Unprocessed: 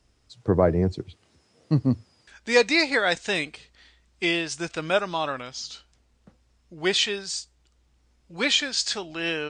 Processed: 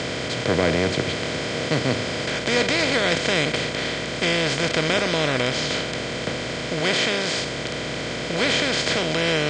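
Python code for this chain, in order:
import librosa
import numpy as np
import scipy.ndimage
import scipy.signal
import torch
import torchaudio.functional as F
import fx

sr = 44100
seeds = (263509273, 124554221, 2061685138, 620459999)

y = fx.bin_compress(x, sr, power=0.2)
y = fx.highpass(y, sr, hz=130.0, slope=12, at=(6.8, 7.38))
y = y * librosa.db_to_amplitude(-7.5)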